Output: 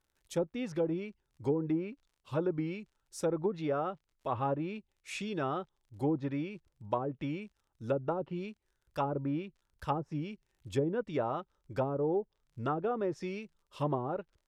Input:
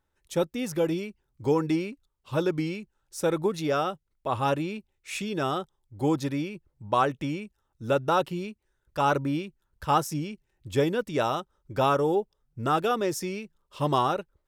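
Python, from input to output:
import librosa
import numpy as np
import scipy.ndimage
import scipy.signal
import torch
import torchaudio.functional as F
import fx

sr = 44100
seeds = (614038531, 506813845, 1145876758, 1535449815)

y = fx.dmg_crackle(x, sr, seeds[0], per_s=47.0, level_db=-51.0)
y = fx.env_lowpass_down(y, sr, base_hz=460.0, full_db=-19.0)
y = y * librosa.db_to_amplitude(-5.5)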